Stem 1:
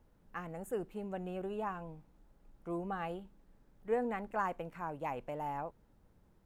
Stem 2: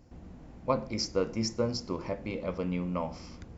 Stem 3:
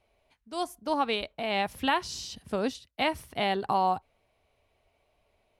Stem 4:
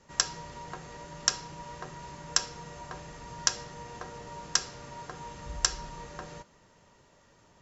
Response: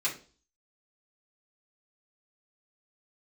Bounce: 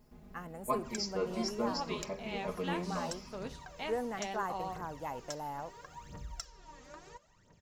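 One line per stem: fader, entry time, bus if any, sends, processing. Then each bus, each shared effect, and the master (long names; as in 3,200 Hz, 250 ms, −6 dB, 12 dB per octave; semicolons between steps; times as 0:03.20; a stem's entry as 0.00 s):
−2.0 dB, 0.00 s, no send, high-shelf EQ 6,700 Hz +12 dB; notch filter 2,400 Hz, Q 5.6
−9.5 dB, 0.00 s, send −9.5 dB, comb filter 4.8 ms, depth 90%
−14.5 dB, 0.80 s, send −13.5 dB, pitch vibrato 6 Hz 40 cents
−9.0 dB, 0.75 s, no send, downward compressor 2.5 to 1, threshold −42 dBFS, peak gain reduction 15.5 dB; phase shifter 0.74 Hz, delay 4 ms, feedback 74%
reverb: on, RT60 0.40 s, pre-delay 3 ms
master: no processing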